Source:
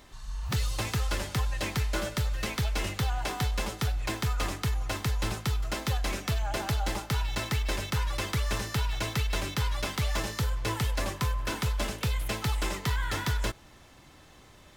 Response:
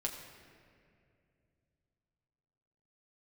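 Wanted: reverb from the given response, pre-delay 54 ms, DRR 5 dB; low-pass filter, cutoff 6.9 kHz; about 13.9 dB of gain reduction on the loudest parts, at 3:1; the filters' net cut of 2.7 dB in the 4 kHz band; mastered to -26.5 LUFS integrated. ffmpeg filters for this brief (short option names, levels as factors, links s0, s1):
-filter_complex "[0:a]lowpass=6900,equalizer=f=4000:t=o:g=-3,acompressor=threshold=0.00562:ratio=3,asplit=2[s0][s1];[1:a]atrim=start_sample=2205,adelay=54[s2];[s1][s2]afir=irnorm=-1:irlink=0,volume=0.501[s3];[s0][s3]amix=inputs=2:normalize=0,volume=7.08"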